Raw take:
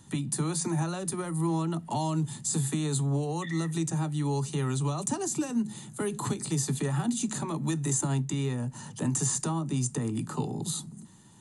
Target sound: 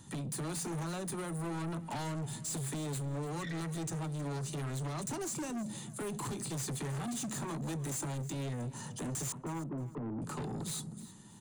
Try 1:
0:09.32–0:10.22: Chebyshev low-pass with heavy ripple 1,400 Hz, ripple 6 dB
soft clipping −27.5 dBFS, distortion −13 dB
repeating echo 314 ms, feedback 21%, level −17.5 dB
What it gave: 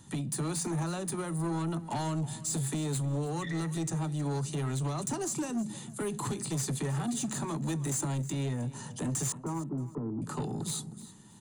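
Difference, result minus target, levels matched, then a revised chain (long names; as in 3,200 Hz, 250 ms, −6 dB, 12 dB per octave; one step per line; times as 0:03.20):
soft clipping: distortion −6 dB
0:09.32–0:10.22: Chebyshev low-pass with heavy ripple 1,400 Hz, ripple 6 dB
soft clipping −35.5 dBFS, distortion −7 dB
repeating echo 314 ms, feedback 21%, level −17.5 dB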